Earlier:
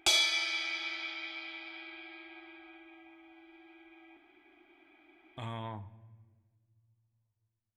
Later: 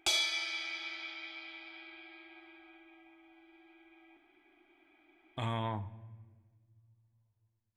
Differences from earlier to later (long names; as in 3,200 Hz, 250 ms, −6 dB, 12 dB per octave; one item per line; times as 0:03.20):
speech +5.0 dB
background −4.0 dB